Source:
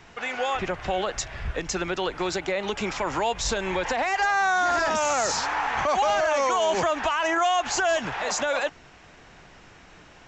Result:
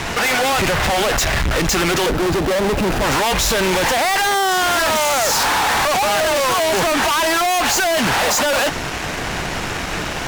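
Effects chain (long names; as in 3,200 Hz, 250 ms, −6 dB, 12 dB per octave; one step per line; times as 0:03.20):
0:02.06–0:03.04: running median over 41 samples
fuzz pedal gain 47 dB, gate −55 dBFS
level −3 dB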